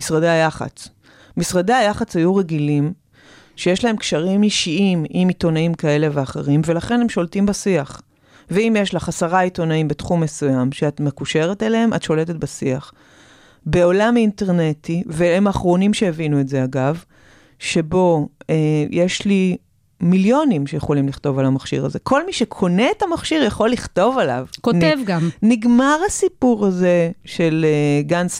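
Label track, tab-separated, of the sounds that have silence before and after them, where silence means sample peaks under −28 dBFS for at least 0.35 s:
1.370000	2.920000	sound
3.590000	7.990000	sound
8.510000	12.830000	sound
13.660000	16.990000	sound
17.620000	19.560000	sound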